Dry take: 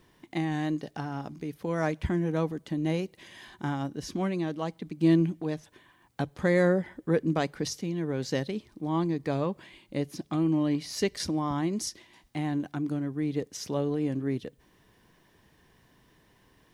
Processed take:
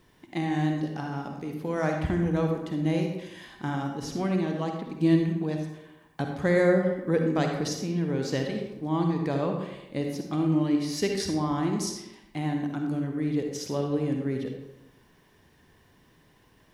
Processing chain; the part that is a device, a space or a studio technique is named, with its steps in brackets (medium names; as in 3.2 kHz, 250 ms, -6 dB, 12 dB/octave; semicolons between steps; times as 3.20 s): bathroom (reverberation RT60 0.90 s, pre-delay 45 ms, DRR 2.5 dB)